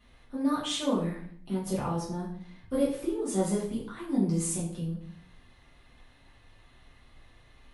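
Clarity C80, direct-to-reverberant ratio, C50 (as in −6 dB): 8.5 dB, −7.5 dB, 5.0 dB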